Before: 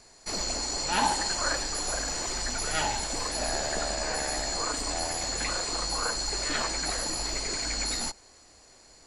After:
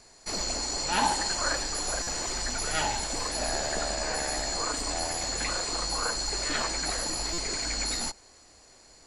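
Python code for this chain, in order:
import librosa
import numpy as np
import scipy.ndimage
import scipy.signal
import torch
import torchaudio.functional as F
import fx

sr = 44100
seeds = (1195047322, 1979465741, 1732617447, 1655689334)

y = fx.buffer_glitch(x, sr, at_s=(2.02, 7.33), block=256, repeats=8)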